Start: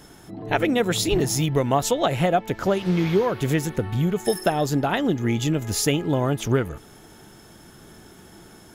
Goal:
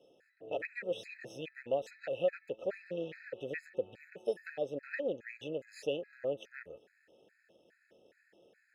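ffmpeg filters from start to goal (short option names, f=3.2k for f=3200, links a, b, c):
-filter_complex "[0:a]aeval=exprs='if(lt(val(0),0),0.447*val(0),val(0))':c=same,asplit=3[a][b][c];[a]bandpass=f=530:t=q:w=8,volume=0dB[d];[b]bandpass=f=1.84k:t=q:w=8,volume=-6dB[e];[c]bandpass=f=2.48k:t=q:w=8,volume=-9dB[f];[d][e][f]amix=inputs=3:normalize=0,afftfilt=real='re*gt(sin(2*PI*2.4*pts/sr)*(1-2*mod(floor(b*sr/1024/1300),2)),0)':imag='im*gt(sin(2*PI*2.4*pts/sr)*(1-2*mod(floor(b*sr/1024/1300),2)),0)':win_size=1024:overlap=0.75,volume=1dB"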